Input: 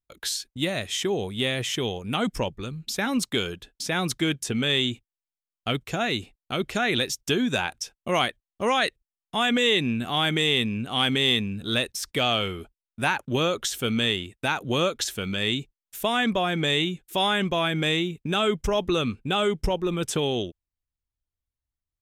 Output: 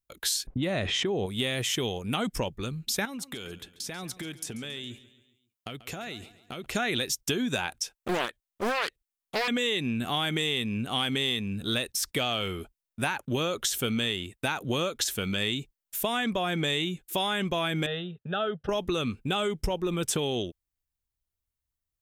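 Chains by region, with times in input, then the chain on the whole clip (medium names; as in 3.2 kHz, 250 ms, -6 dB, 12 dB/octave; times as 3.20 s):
0.47–1.26 s: level-controlled noise filter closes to 750 Hz, open at -22 dBFS + peaking EQ 12 kHz -13.5 dB 2.6 oct + level flattener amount 70%
3.05–6.66 s: high-pass 62 Hz + compression 12:1, threshold -34 dBFS + feedback delay 138 ms, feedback 48%, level -16.5 dB
7.80–9.48 s: bass shelf 360 Hz -6.5 dB + loudspeaker Doppler distortion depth 0.68 ms
17.86–18.69 s: band-pass 140–2100 Hz + static phaser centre 1.5 kHz, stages 8
whole clip: compression, threshold -25 dBFS; treble shelf 9.2 kHz +8 dB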